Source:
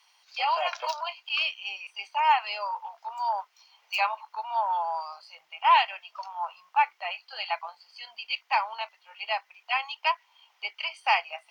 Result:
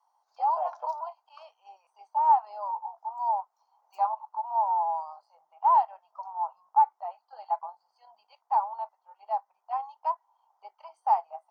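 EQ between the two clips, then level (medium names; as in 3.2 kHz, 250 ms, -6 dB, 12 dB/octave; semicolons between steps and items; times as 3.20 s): FFT filter 440 Hz 0 dB, 850 Hz +12 dB, 2.5 kHz -28 dB, 7 kHz -9 dB; -8.5 dB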